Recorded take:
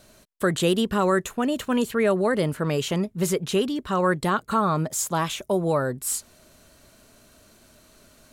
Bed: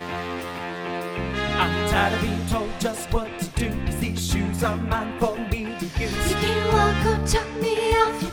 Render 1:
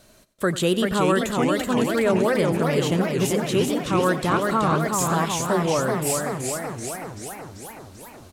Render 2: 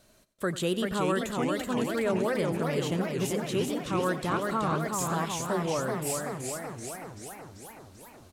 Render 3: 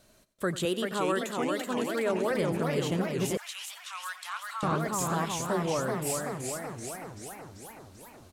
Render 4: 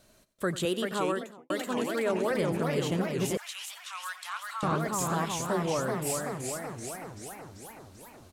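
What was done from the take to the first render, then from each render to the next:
feedback echo 92 ms, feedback 45%, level -16.5 dB; warbling echo 0.382 s, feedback 66%, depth 217 cents, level -4 dB
gain -7.5 dB
0.65–2.31 HPF 240 Hz; 3.37–4.63 Bessel high-pass 1600 Hz, order 8
0.99–1.5 studio fade out

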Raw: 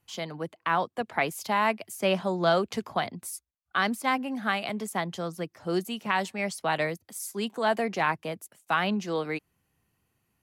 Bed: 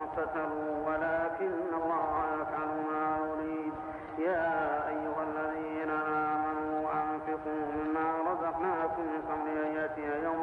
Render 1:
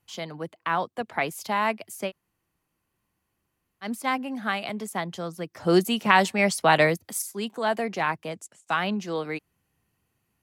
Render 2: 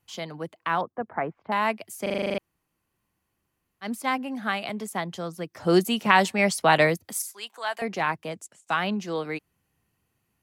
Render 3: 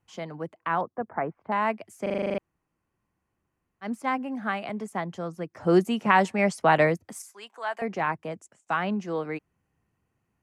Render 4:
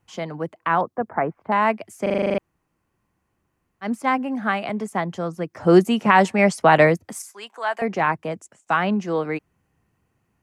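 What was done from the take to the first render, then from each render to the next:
2.07–3.86 room tone, crossfade 0.10 s; 5.55–7.22 gain +8.5 dB; 8.3–8.77 synth low-pass 7500 Hz, resonance Q 2.6
0.81–1.52 LPF 1600 Hz 24 dB/oct; 2.02 stutter in place 0.04 s, 9 plays; 7.29–7.82 HPF 980 Hz
LPF 6200 Hz 12 dB/oct; bell 3900 Hz -11.5 dB 1.2 oct
gain +6.5 dB; limiter -3 dBFS, peak gain reduction 3 dB

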